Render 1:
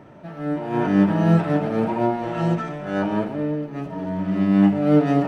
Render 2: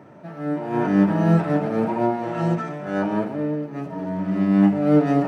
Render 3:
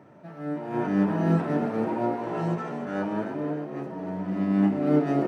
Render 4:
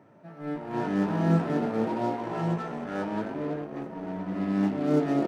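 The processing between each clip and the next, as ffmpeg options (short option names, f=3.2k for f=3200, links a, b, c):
-af "highpass=110,equalizer=f=3.2k:t=o:w=0.66:g=-5"
-filter_complex "[0:a]asplit=6[a][b][c][d][e][f];[b]adelay=300,afreqshift=68,volume=-8.5dB[g];[c]adelay=600,afreqshift=136,volume=-15.4dB[h];[d]adelay=900,afreqshift=204,volume=-22.4dB[i];[e]adelay=1200,afreqshift=272,volume=-29.3dB[j];[f]adelay=1500,afreqshift=340,volume=-36.2dB[k];[a][g][h][i][j][k]amix=inputs=6:normalize=0,volume=-6dB"
-filter_complex "[0:a]asplit=2[a][b];[b]acrusher=bits=4:mix=0:aa=0.5,volume=-9dB[c];[a][c]amix=inputs=2:normalize=0,asplit=2[d][e];[e]adelay=18,volume=-11.5dB[f];[d][f]amix=inputs=2:normalize=0,volume=-4.5dB"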